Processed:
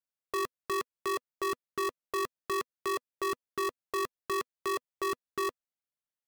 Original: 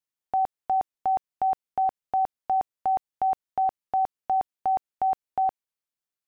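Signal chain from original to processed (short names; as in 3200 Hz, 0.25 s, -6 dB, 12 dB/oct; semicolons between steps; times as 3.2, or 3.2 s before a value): graphic EQ 125/250/500/1000 Hz +8/+8/-8/+6 dB; polarity switched at an audio rate 370 Hz; gain -9 dB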